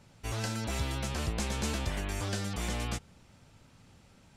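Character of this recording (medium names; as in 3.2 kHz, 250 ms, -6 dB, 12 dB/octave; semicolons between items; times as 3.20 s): noise floor -60 dBFS; spectral tilt -4.0 dB/octave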